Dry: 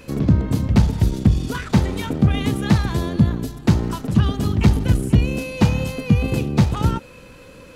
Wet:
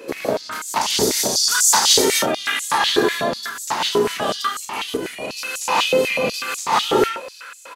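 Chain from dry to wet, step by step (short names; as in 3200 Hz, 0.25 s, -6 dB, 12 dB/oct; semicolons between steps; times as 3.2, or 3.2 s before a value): 0.81–2.04 resonant high shelf 3800 Hz +13 dB, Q 1.5; 4.39–5.3 level quantiser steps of 20 dB; doubler 35 ms -8 dB; non-linear reverb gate 0.2 s rising, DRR -4 dB; stepped high-pass 8.1 Hz 410–7200 Hz; gain +1.5 dB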